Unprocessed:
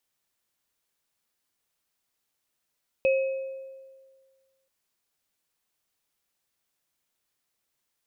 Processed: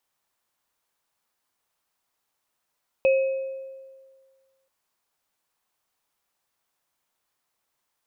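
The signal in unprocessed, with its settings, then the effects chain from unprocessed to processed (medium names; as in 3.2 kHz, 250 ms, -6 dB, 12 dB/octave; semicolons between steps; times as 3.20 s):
sine partials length 1.63 s, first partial 534 Hz, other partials 2.55 kHz, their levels -9 dB, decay 1.70 s, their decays 0.92 s, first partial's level -18 dB
peaking EQ 950 Hz +8 dB 1.4 oct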